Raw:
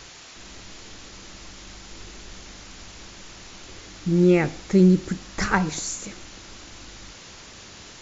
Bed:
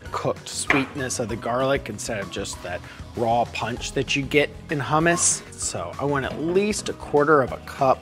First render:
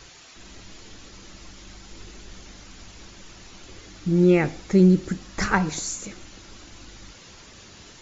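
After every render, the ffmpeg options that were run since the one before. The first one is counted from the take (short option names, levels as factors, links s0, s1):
-af "afftdn=nr=6:nf=-45"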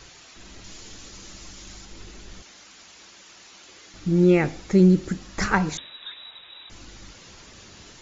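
-filter_complex "[0:a]asettb=1/sr,asplit=3[s0][s1][s2];[s0]atrim=end=0.644[s3];[s1]atrim=start=0.64:end=1.85,asetpts=PTS-STARTPTS,afade=t=in:d=0.004:c=qsin,afade=t=out:st=1.206:d=0.004:c=qsin,highshelf=f=6300:g=11[s4];[s2]atrim=start=1.846[s5];[s3][s4]acrossfade=d=0.004:c1=hsin:c2=qsin[s6];[s6][s5]acrossfade=d=0.004:c1=qsin:c2=hsin,asettb=1/sr,asplit=3[s7][s8][s9];[s7]atrim=end=2.424[s10];[s8]atrim=start=2.42:end=3.94,asetpts=PTS-STARTPTS,afade=t=in:d=0.004:c=qsin,afade=t=out:st=1.516:d=0.004:c=qsin,highpass=f=750:p=1[s11];[s9]atrim=start=3.936[s12];[s10][s11]acrossfade=d=0.004:c1=hsin:c2=qsin[s13];[s13][s12]acrossfade=d=0.004:c1=qsin:c2=hsin,asettb=1/sr,asplit=3[s14][s15][s16];[s14]atrim=end=5.774[s17];[s15]atrim=start=5.77:end=6.7,asetpts=PTS-STARTPTS,afade=t=in:d=0.004:c=qsin,afade=t=out:st=0.926:d=0.004:c=qsin,lowpass=f=3300:t=q:w=0.5098,lowpass=f=3300:t=q:w=0.6013,lowpass=f=3300:t=q:w=0.9,lowpass=f=3300:t=q:w=2.563,afreqshift=-3900[s18];[s16]atrim=start=6.696[s19];[s17][s18]acrossfade=d=0.004:c1=hsin:c2=qsin[s20];[s20][s19]acrossfade=d=0.004:c1=qsin:c2=hsin"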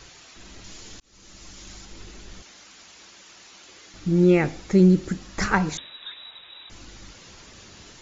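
-filter_complex "[0:a]asplit=2[s0][s1];[s0]atrim=end=1,asetpts=PTS-STARTPTS,afade=t=out:st=0.996:d=0.004:c=hsin[s2];[s1]atrim=start=1,asetpts=PTS-STARTPTS,afade=t=in:d=0.81:c=qsin[s3];[s2][s3]concat=n=2:v=0:a=1"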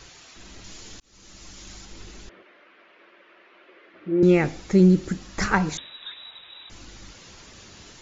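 -filter_complex "[0:a]asettb=1/sr,asplit=3[s0][s1][s2];[s0]atrim=end=2.294[s3];[s1]atrim=start=2.29:end=4.23,asetpts=PTS-STARTPTS,afade=t=in:d=0.004:c=qsin,afade=t=out:st=1.936:d=0.004:c=qsin,highpass=360,equalizer=f=360:t=q:w=4:g=7,equalizer=f=580:t=q:w=4:g=6,equalizer=f=820:t=q:w=4:g=-7,lowpass=f=2400:w=0.5412,lowpass=f=2400:w=1.3066[s4];[s2]atrim=start=4.226[s5];[s3][s4]acrossfade=d=0.004:c1=hsin:c2=qsin[s6];[s6][s5]acrossfade=d=0.004:c1=qsin:c2=hsin"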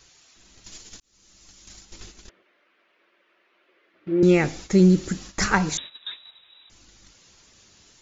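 -af "agate=range=0.251:threshold=0.01:ratio=16:detection=peak,highshelf=f=4500:g=10"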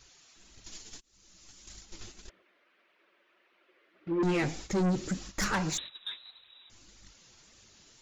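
-af "flanger=delay=0.2:depth=9.1:regen=33:speed=1.7:shape=triangular,asoftclip=type=tanh:threshold=0.0596"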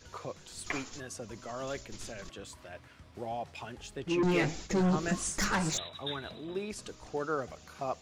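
-filter_complex "[1:a]volume=0.15[s0];[0:a][s0]amix=inputs=2:normalize=0"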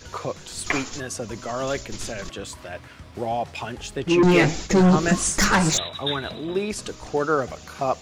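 -af "volume=3.76"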